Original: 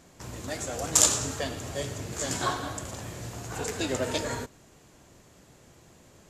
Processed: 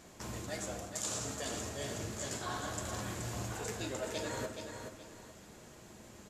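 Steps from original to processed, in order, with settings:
low-shelf EQ 210 Hz −3.5 dB
reversed playback
downward compressor 6 to 1, threshold −38 dBFS, peak gain reduction 21.5 dB
reversed playback
repeating echo 425 ms, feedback 31%, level −7 dB
convolution reverb RT60 0.75 s, pre-delay 5 ms, DRR 6.5 dB

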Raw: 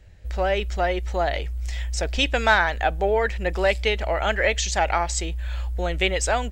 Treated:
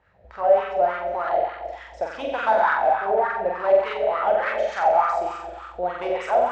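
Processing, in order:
low-pass filter 6,900 Hz 12 dB per octave
low-shelf EQ 310 Hz +8 dB
on a send: flutter between parallel walls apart 7.7 metres, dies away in 1.3 s
on the sum: hard clipping −13 dBFS, distortion −14 dB
in parallel at +2 dB: brickwall limiter −21.5 dBFS, peak gain reduction 8.5 dB
on the sum: LFO wah 3.4 Hz 610–1,300 Hz, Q 4.5
level +2.5 dB

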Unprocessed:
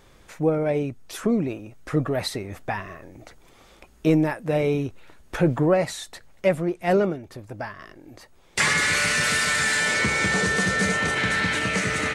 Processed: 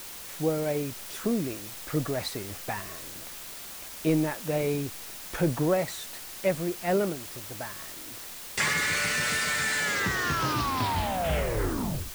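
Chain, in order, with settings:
turntable brake at the end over 2.36 s
bit-depth reduction 6 bits, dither triangular
level −5.5 dB

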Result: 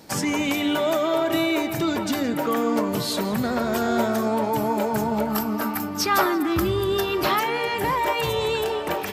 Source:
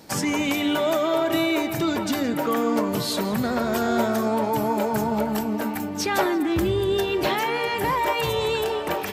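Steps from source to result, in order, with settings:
0:05.30–0:07.40: thirty-one-band graphic EQ 500 Hz −5 dB, 1,250 Hz +11 dB, 5,000 Hz +6 dB, 12,500 Hz +9 dB

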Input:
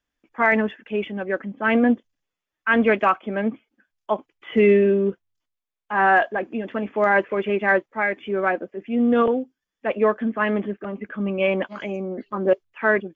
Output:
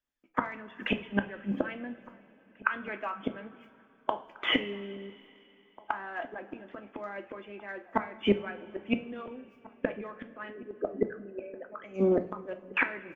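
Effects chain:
0:10.50–0:11.84: spectral envelope exaggerated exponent 3
noise gate with hold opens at −38 dBFS
harmonic and percussive parts rebalanced percussive +9 dB
gate with flip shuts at −18 dBFS, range −30 dB
slap from a distant wall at 290 metres, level −20 dB
coupled-rooms reverb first 0.38 s, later 3.3 s, from −18 dB, DRR 7 dB
level +5.5 dB

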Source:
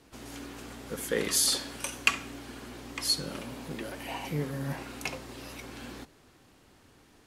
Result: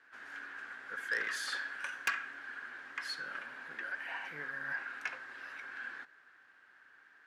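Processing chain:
resonant band-pass 1,600 Hz, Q 9.4
soft clipping −38.5 dBFS, distortion −8 dB
level +13.5 dB

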